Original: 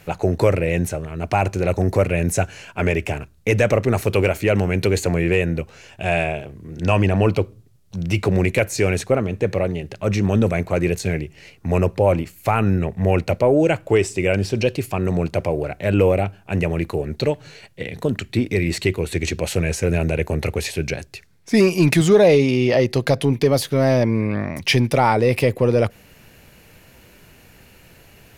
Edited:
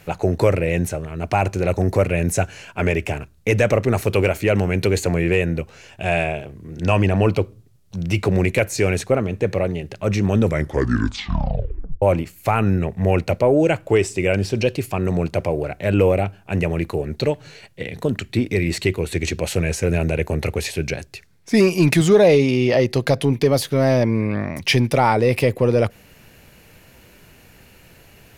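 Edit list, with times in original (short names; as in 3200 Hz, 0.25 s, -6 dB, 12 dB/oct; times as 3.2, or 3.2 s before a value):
10.41 tape stop 1.61 s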